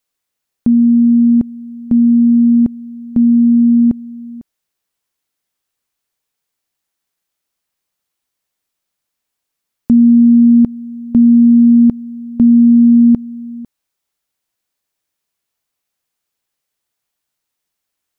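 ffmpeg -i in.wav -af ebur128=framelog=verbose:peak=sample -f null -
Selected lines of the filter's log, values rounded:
Integrated loudness:
  I:         -10.1 LUFS
  Threshold: -21.1 LUFS
Loudness range:
  LRA:         8.6 LU
  Threshold: -32.9 LUFS
  LRA low:   -18.2 LUFS
  LRA high:   -9.6 LUFS
Sample peak:
  Peak:       -3.6 dBFS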